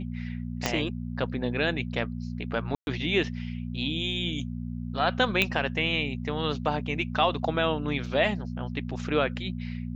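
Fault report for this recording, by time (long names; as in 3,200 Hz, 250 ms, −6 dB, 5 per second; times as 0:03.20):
mains hum 60 Hz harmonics 4 −34 dBFS
0:00.66: click −9 dBFS
0:02.75–0:02.87: drop-out 121 ms
0:05.42: click −9 dBFS
0:08.06: drop-out 2.8 ms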